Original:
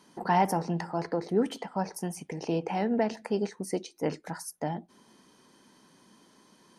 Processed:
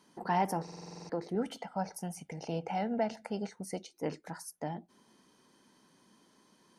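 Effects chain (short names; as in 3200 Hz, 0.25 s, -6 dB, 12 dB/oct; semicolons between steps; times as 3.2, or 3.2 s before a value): 1.35–3.94 comb 1.4 ms, depth 52%; stuck buffer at 0.63, samples 2048, times 9; gain -5.5 dB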